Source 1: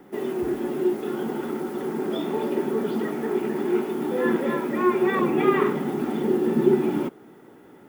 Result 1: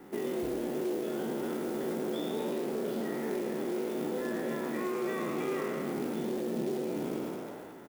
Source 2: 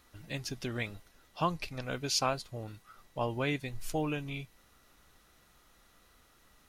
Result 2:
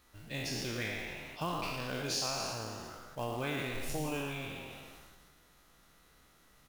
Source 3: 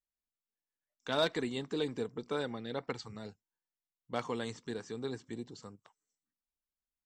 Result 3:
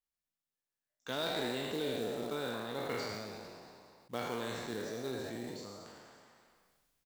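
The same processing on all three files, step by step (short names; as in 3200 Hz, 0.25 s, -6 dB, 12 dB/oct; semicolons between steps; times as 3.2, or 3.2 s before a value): spectral trails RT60 1.20 s; dynamic EQ 1000 Hz, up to -4 dB, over -37 dBFS, Q 0.87; compressor 16:1, threshold -27 dBFS; short-mantissa float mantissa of 2-bit; on a send: frequency-shifting echo 0.112 s, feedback 48%, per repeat +130 Hz, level -8.5 dB; on the sum: sustainer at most 25 dB/s; gain -4 dB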